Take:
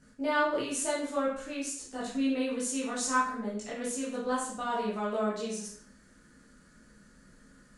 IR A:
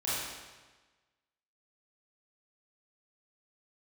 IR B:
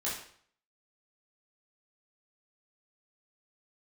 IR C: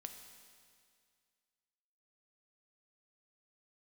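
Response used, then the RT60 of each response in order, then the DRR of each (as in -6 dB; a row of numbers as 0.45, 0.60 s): B; 1.3, 0.55, 2.1 s; -10.5, -7.5, 5.5 dB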